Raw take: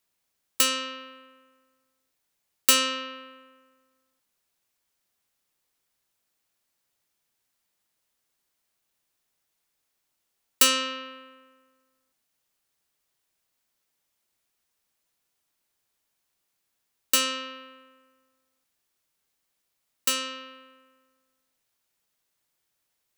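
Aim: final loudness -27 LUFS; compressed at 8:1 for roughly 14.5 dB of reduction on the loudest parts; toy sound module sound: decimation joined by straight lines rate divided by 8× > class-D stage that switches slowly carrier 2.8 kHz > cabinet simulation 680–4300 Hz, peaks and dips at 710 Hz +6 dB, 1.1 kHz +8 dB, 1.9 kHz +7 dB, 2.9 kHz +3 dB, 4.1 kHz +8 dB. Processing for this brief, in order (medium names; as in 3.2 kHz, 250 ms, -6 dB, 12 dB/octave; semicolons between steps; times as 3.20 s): compression 8:1, threshold -29 dBFS; decimation joined by straight lines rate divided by 8×; class-D stage that switches slowly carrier 2.8 kHz; cabinet simulation 680–4300 Hz, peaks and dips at 710 Hz +6 dB, 1.1 kHz +8 dB, 1.9 kHz +7 dB, 2.9 kHz +3 dB, 4.1 kHz +8 dB; trim +3 dB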